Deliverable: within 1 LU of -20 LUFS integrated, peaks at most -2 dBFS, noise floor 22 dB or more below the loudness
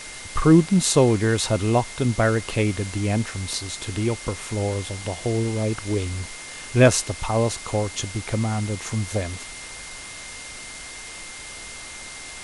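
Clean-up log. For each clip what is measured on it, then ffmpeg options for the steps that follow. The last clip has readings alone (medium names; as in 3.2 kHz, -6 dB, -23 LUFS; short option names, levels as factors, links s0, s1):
steady tone 2.1 kHz; tone level -41 dBFS; noise floor -38 dBFS; noise floor target -45 dBFS; loudness -23.0 LUFS; peak level -3.5 dBFS; loudness target -20.0 LUFS
-> -af "bandreject=f=2100:w=30"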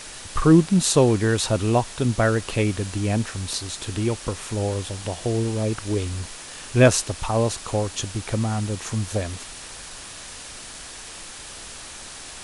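steady tone not found; noise floor -39 dBFS; noise floor target -45 dBFS
-> -af "afftdn=nr=6:nf=-39"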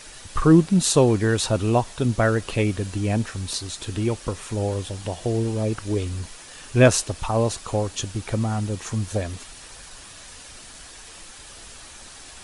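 noise floor -43 dBFS; noise floor target -45 dBFS
-> -af "afftdn=nr=6:nf=-43"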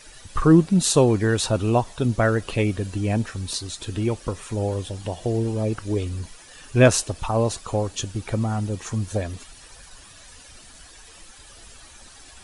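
noise floor -47 dBFS; loudness -23.0 LUFS; peak level -3.5 dBFS; loudness target -20.0 LUFS
-> -af "volume=1.41,alimiter=limit=0.794:level=0:latency=1"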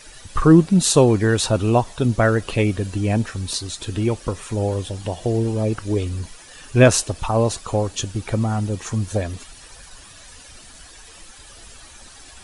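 loudness -20.0 LUFS; peak level -2.0 dBFS; noise floor -44 dBFS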